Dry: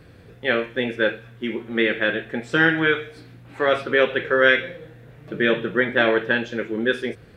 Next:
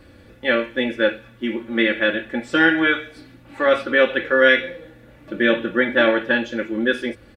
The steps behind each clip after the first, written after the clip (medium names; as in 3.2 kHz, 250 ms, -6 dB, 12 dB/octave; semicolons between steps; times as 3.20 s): comb 3.5 ms, depth 74%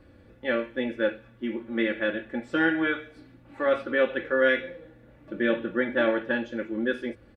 treble shelf 2.2 kHz -9.5 dB; trim -6 dB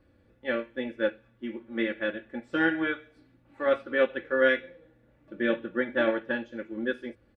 upward expansion 1.5:1, over -37 dBFS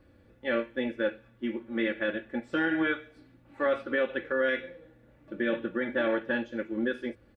peak limiter -22 dBFS, peak gain reduction 10.5 dB; trim +3.5 dB